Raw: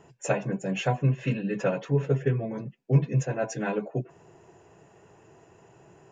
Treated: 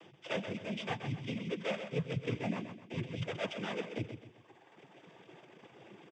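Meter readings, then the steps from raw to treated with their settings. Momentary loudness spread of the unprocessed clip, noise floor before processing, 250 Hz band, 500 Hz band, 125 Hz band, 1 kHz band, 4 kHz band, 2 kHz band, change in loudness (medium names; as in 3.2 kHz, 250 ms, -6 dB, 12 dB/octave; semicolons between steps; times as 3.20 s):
9 LU, -58 dBFS, -9.0 dB, -10.0 dB, -14.5 dB, -9.0 dB, no reading, -5.5 dB, -10.5 dB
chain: sorted samples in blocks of 16 samples; high-pass 170 Hz 12 dB/octave; reverb removal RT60 1.5 s; resonant high shelf 3.2 kHz -8.5 dB, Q 1.5; reverse; compression 6:1, threshold -37 dBFS, peak gain reduction 17 dB; reverse; noise-vocoded speech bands 16; on a send: feedback delay 129 ms, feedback 37%, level -8.5 dB; on the sum: trim +3 dB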